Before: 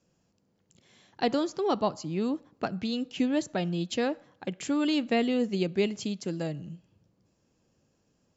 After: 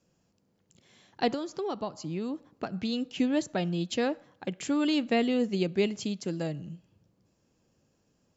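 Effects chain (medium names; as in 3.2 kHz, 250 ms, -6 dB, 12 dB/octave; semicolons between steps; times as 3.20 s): 1.28–2.74 s: compression 6:1, threshold -30 dBFS, peak gain reduction 9 dB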